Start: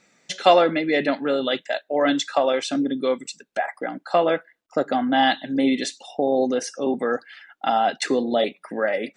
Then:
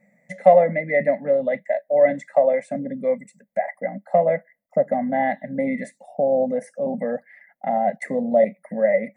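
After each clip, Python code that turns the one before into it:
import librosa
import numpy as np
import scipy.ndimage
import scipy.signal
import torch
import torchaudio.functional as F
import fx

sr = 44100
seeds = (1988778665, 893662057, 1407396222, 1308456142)

y = fx.curve_eq(x, sr, hz=(110.0, 200.0, 360.0, 570.0, 1400.0, 2000.0, 2900.0, 5500.0, 12000.0), db=(0, 12, -19, 10, -21, 6, -30, -24, 3))
y = y * 10.0 ** (-2.0 / 20.0)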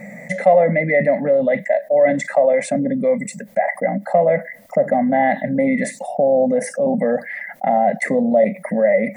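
y = fx.env_flatten(x, sr, amount_pct=50)
y = y * 10.0 ** (-1.0 / 20.0)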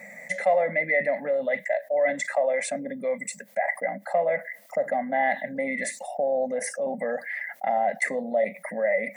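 y = fx.highpass(x, sr, hz=1300.0, slope=6)
y = y * 10.0 ** (-1.5 / 20.0)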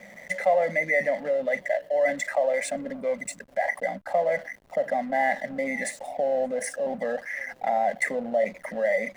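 y = fx.echo_tape(x, sr, ms=574, feedback_pct=54, wet_db=-23.0, lp_hz=2000.0, drive_db=9.0, wow_cents=25)
y = fx.backlash(y, sr, play_db=-40.0)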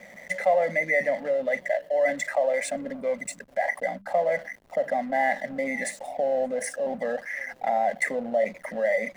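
y = fx.hum_notches(x, sr, base_hz=50, count=4)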